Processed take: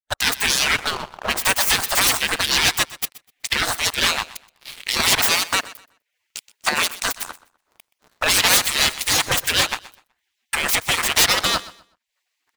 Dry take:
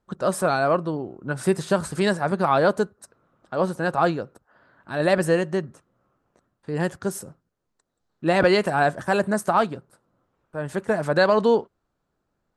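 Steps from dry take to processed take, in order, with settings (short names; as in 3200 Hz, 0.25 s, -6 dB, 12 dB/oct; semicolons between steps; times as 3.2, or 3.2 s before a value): tracing distortion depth 0.35 ms; recorder AGC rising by 49 dB/s; spectral gate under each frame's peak -25 dB weak; 5.17–6.93 HPF 120 Hz; harmonic-percussive split harmonic -6 dB; sample leveller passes 5; on a send: feedback echo 0.125 s, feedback 29%, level -18 dB; on the sum: mismatched tape noise reduction decoder only; gain +3.5 dB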